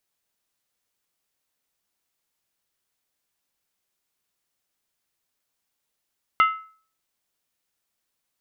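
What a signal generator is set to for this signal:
struck skin, lowest mode 1,300 Hz, decay 0.44 s, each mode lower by 7.5 dB, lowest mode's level −11.5 dB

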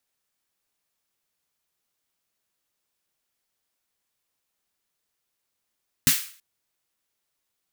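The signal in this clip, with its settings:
synth snare length 0.33 s, tones 150 Hz, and 250 Hz, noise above 1,500 Hz, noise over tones 4 dB, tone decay 0.10 s, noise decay 0.44 s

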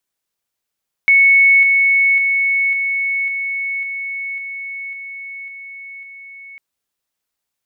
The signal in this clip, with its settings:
level staircase 2,210 Hz −7 dBFS, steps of −3 dB, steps 10, 0.55 s 0.00 s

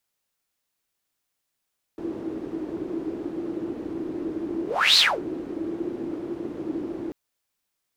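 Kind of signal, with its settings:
pass-by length 5.14 s, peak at 0:02.99, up 0.33 s, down 0.25 s, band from 330 Hz, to 4,200 Hz, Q 9.2, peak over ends 16 dB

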